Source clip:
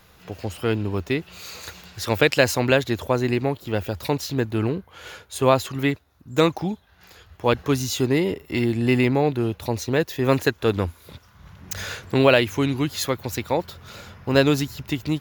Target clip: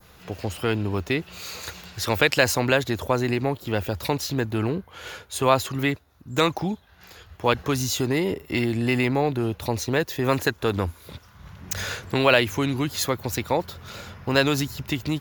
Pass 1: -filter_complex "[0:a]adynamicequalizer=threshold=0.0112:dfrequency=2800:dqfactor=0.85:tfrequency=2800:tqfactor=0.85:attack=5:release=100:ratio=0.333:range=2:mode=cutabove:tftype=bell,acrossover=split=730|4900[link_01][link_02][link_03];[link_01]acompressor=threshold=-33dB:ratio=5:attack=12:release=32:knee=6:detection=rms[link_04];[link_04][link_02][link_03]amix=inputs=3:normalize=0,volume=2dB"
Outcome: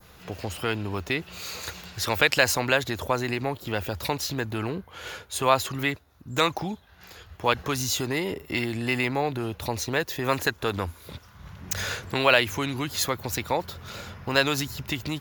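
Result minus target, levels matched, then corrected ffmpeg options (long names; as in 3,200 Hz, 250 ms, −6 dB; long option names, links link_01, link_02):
downward compressor: peak gain reduction +6.5 dB
-filter_complex "[0:a]adynamicequalizer=threshold=0.0112:dfrequency=2800:dqfactor=0.85:tfrequency=2800:tqfactor=0.85:attack=5:release=100:ratio=0.333:range=2:mode=cutabove:tftype=bell,acrossover=split=730|4900[link_01][link_02][link_03];[link_01]acompressor=threshold=-25dB:ratio=5:attack=12:release=32:knee=6:detection=rms[link_04];[link_04][link_02][link_03]amix=inputs=3:normalize=0,volume=2dB"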